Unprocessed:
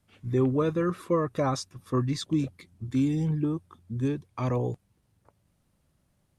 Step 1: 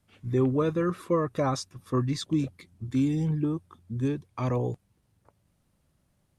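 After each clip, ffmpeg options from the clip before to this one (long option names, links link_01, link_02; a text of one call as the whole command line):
ffmpeg -i in.wav -af anull out.wav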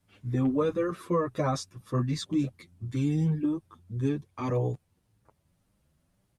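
ffmpeg -i in.wav -filter_complex "[0:a]asplit=2[link_01][link_02];[link_02]adelay=8.4,afreqshift=1.8[link_03];[link_01][link_03]amix=inputs=2:normalize=1,volume=2dB" out.wav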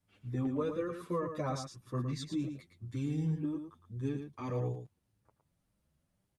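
ffmpeg -i in.wav -af "aecho=1:1:112:0.422,volume=-8dB" out.wav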